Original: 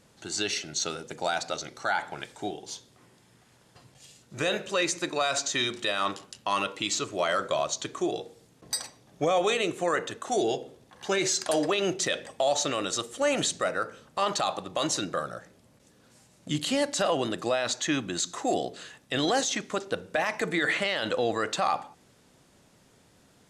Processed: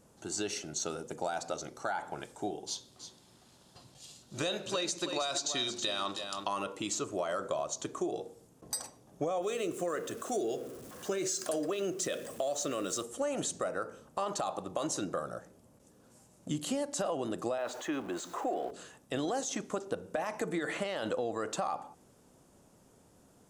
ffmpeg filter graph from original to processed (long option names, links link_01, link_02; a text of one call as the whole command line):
ffmpeg -i in.wav -filter_complex "[0:a]asettb=1/sr,asplit=3[link_01][link_02][link_03];[link_01]atrim=end=2.674[link_04];[link_02]atrim=start=2.67:end=6.48,asetpts=PTS-STARTPTS,afade=type=in:duration=0.004:curve=qsin,afade=type=out:start_time=3.806:duration=0.004:curve=qsin,equalizer=frequency=4000:width_type=o:width=0.93:gain=14,bandreject=frequency=460:width=11,aecho=1:1:321:0.299,atrim=end_sample=168021[link_05];[link_03]atrim=start=6.476[link_06];[link_04][link_05]acrossfade=duration=0.004:curve1=hsin:curve2=qsin[link_07];[link_07][link_06]acrossfade=duration=0.004:curve1=qsin:curve2=hsin,asettb=1/sr,asplit=3[link_08][link_09][link_10];[link_08]atrim=end=9.424[link_11];[link_09]atrim=start=9.42:end=13.03,asetpts=PTS-STARTPTS,afade=type=in:duration=0.004:curve=qsin,afade=type=out:start_time=3.606:duration=0.004:curve=qsin,aeval=exprs='val(0)+0.5*0.00944*sgn(val(0))':channel_layout=same,highpass=frequency=130:poles=1,equalizer=frequency=860:width_type=o:width=0.37:gain=-13[link_12];[link_10]atrim=start=13.026[link_13];[link_11][link_12]acrossfade=duration=0.004:curve1=hsin:curve2=qsin[link_14];[link_14][link_13]acrossfade=duration=0.004:curve1=qsin:curve2=hsin,asettb=1/sr,asplit=3[link_15][link_16][link_17];[link_15]atrim=end=17.584[link_18];[link_16]atrim=start=17.58:end=18.71,asetpts=PTS-STARTPTS,afade=type=in:duration=0.004:curve=qsin,afade=type=out:start_time=1.126:duration=0.004:curve=qsin,aeval=exprs='val(0)+0.5*0.0178*sgn(val(0))':channel_layout=same,acrossover=split=310 3300:gain=0.2 1 0.2[link_19][link_20][link_21];[link_19][link_20][link_21]amix=inputs=3:normalize=0[link_22];[link_17]atrim=start=18.706[link_23];[link_18][link_22]acrossfade=duration=0.004:curve1=hsin:curve2=qsin[link_24];[link_24][link_23]acrossfade=duration=0.004:curve1=qsin:curve2=hsin,equalizer=frequency=125:width_type=o:width=1:gain=-3,equalizer=frequency=2000:width_type=o:width=1:gain=-9,equalizer=frequency=4000:width_type=o:width=1:gain=-9,acompressor=threshold=-30dB:ratio=6" out.wav